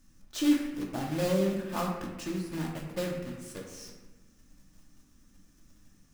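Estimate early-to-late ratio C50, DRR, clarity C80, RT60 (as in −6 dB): 3.5 dB, −1.5 dB, 5.5 dB, 1.1 s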